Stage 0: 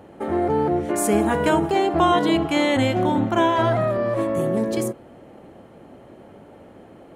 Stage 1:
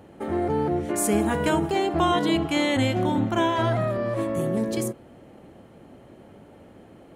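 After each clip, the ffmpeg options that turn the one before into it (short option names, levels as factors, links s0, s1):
-af "equalizer=f=740:t=o:w=3:g=-5"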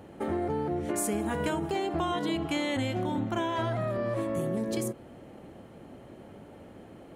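-af "acompressor=threshold=0.0447:ratio=6"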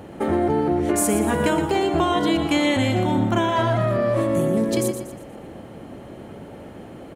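-af "aecho=1:1:119|238|357|476|595:0.355|0.145|0.0596|0.0245|0.01,volume=2.82"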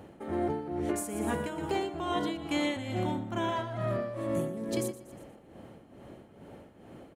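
-af "tremolo=f=2.3:d=0.66,volume=0.355"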